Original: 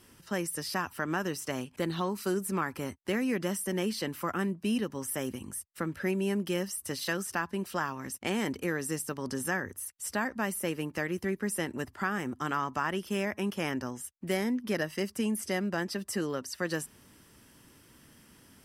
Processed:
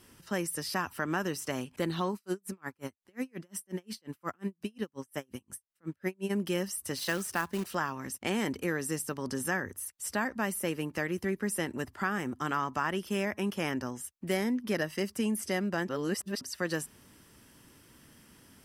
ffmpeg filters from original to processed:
ffmpeg -i in.wav -filter_complex "[0:a]asplit=3[link_01][link_02][link_03];[link_01]afade=type=out:start_time=2.11:duration=0.02[link_04];[link_02]aeval=exprs='val(0)*pow(10,-40*(0.5-0.5*cos(2*PI*5.6*n/s))/20)':channel_layout=same,afade=type=in:start_time=2.11:duration=0.02,afade=type=out:start_time=6.29:duration=0.02[link_05];[link_03]afade=type=in:start_time=6.29:duration=0.02[link_06];[link_04][link_05][link_06]amix=inputs=3:normalize=0,asettb=1/sr,asplit=3[link_07][link_08][link_09];[link_07]atrim=end=6.964[link_10];[link_08]atrim=start=6.96:end=7.75,asetpts=PTS-STARTPTS,afade=type=in:duration=0.004:curve=qsin,afade=type=out:start_time=0.786:duration=0.004:curve=qsin,acrusher=bits=3:mode=log:mix=0:aa=0.000001[link_11];[link_09]atrim=start=7.746[link_12];[link_10][link_11]acrossfade=duration=0.004:curve1=hsin:curve2=qsin[link_13];[link_13][link_12]acrossfade=duration=0.004:curve1=qsin:curve2=hsin,asplit=3[link_14][link_15][link_16];[link_14]atrim=end=15.892[link_17];[link_15]atrim=start=15.888:end=16.412,asetpts=PTS-STARTPTS,areverse[link_18];[link_16]atrim=start=16.408[link_19];[link_17][link_18]acrossfade=duration=0.004:curve1=hsin:curve2=hsin[link_20];[link_20][link_19]acrossfade=duration=0.004:curve1=hsin:curve2=hsin" out.wav

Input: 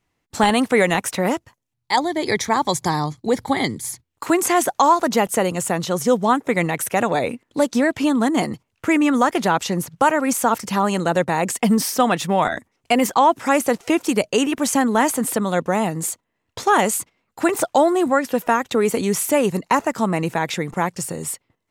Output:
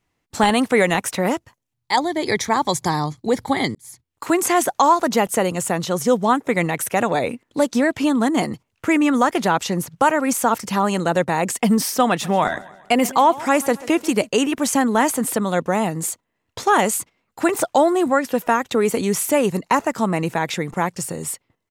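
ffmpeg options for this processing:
ffmpeg -i in.wav -filter_complex "[0:a]asplit=3[link_01][link_02][link_03];[link_01]afade=type=out:start_time=12.21:duration=0.02[link_04];[link_02]aecho=1:1:136|272|408|544:0.112|0.0516|0.0237|0.0109,afade=type=in:start_time=12.21:duration=0.02,afade=type=out:start_time=14.27:duration=0.02[link_05];[link_03]afade=type=in:start_time=14.27:duration=0.02[link_06];[link_04][link_05][link_06]amix=inputs=3:normalize=0,asplit=2[link_07][link_08];[link_07]atrim=end=3.75,asetpts=PTS-STARTPTS,afade=type=out:start_time=3.746:duration=0.004:curve=hsin[link_09];[link_08]atrim=start=3.75,asetpts=PTS-STARTPTS,afade=type=in:duration=0.76:curve=qsin[link_10];[link_09][link_10]concat=n=2:v=0:a=1" out.wav

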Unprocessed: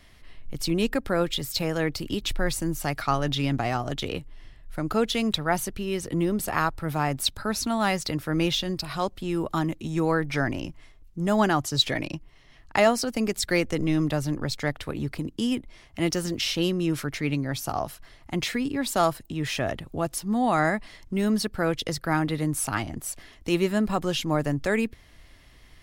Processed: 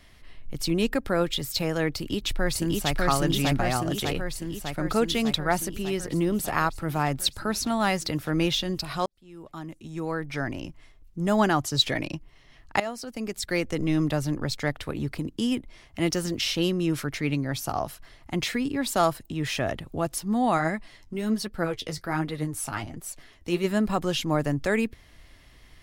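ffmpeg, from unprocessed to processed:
ffmpeg -i in.wav -filter_complex "[0:a]asplit=2[link_01][link_02];[link_02]afade=type=in:start_time=1.95:duration=0.01,afade=type=out:start_time=2.96:duration=0.01,aecho=0:1:600|1200|1800|2400|3000|3600|4200|4800|5400|6000|6600|7200:0.944061|0.660843|0.46259|0.323813|0.226669|0.158668|0.111068|0.0777475|0.0544232|0.0380963|0.0266674|0.0186672[link_03];[link_01][link_03]amix=inputs=2:normalize=0,asplit=3[link_04][link_05][link_06];[link_04]afade=type=out:start_time=20.57:duration=0.02[link_07];[link_05]flanger=delay=3.7:depth=9.6:regen=40:speed=1.3:shape=triangular,afade=type=in:start_time=20.57:duration=0.02,afade=type=out:start_time=23.63:duration=0.02[link_08];[link_06]afade=type=in:start_time=23.63:duration=0.02[link_09];[link_07][link_08][link_09]amix=inputs=3:normalize=0,asplit=3[link_10][link_11][link_12];[link_10]atrim=end=9.06,asetpts=PTS-STARTPTS,afade=type=out:start_time=9.056:duration=0.004:curve=hsin[link_13];[link_11]atrim=start=9.06:end=12.8,asetpts=PTS-STARTPTS,afade=type=in:duration=2.23,afade=type=out:start_time=3.736:duration=0.004:curve=hsin:silence=0.16788[link_14];[link_12]atrim=start=12.8,asetpts=PTS-STARTPTS,afade=type=in:duration=1.19:silence=0.16788[link_15];[link_13][link_14][link_15]concat=n=3:v=0:a=1" out.wav

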